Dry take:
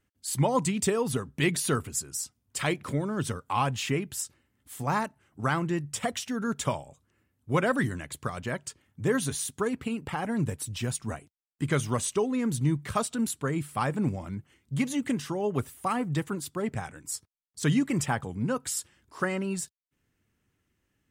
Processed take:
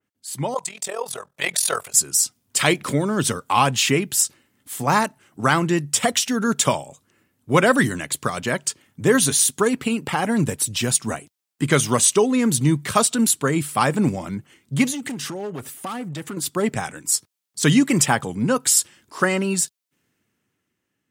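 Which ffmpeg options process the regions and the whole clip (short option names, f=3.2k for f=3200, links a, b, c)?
-filter_complex "[0:a]asettb=1/sr,asplit=3[a][b][c];[a]atrim=end=0.544[d];[b]atrim=start=0.54:end=1.94,asetpts=PTS-STARTPTS,afade=t=in:d=0.004:c=qsin,afade=t=out:st=1.396:d=0.004:c=qsin,lowshelf=f=410:t=q:w=3:g=-13,bandreject=f=2.9k:w=19,tremolo=f=42:d=0.824[e];[c]atrim=start=1.936[f];[d][e]acrossfade=d=0.004:c1=hsin:c2=qsin[g];[g][f]acrossfade=d=0.004:c1=qsin:c2=hsin,asettb=1/sr,asplit=3[h][i][j];[h]atrim=end=14.904[k];[i]atrim=start=14.9:end=16.37,asetpts=PTS-STARTPTS,afade=t=in:d=0.004:c=qsin,afade=t=out:st=1.466:d=0.004:c=qsin,volume=25dB,asoftclip=hard,volume=-25dB,bandreject=f=1k:w=16,acompressor=threshold=-36dB:ratio=10:attack=3.2:release=140:knee=1:detection=peak[l];[j]atrim=start=16.366[m];[k][l]acrossfade=d=0.004:c1=hsin:c2=qsin[n];[n][m]acrossfade=d=0.004:c1=qsin:c2=hsin,dynaudnorm=f=200:g=13:m=10dB,highpass=150,adynamicequalizer=threshold=0.0158:dfrequency=2700:dqfactor=0.7:tfrequency=2700:tqfactor=0.7:attack=5:release=100:ratio=0.375:range=3:mode=boostabove:tftype=highshelf"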